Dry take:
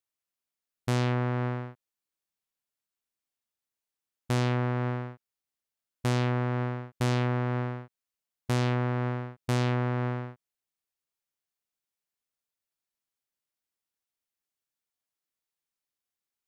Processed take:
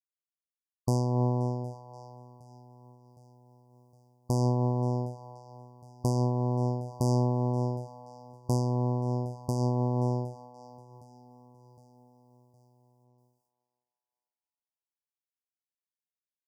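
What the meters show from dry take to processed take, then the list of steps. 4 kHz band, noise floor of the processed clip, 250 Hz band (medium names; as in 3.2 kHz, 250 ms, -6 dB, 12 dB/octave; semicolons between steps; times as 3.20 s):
-8.5 dB, under -85 dBFS, +1.0 dB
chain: band-passed feedback delay 527 ms, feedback 59%, band-pass 2.4 kHz, level -11.5 dB; in parallel at +3 dB: compression, threshold -33 dBFS, peak gain reduction 9 dB; on the sum: gate with hold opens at -59 dBFS; brick-wall FIR band-stop 1.1–4.6 kHz; on a send: feedback delay 763 ms, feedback 54%, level -21 dB; on the sum: random flutter of the level, depth 60%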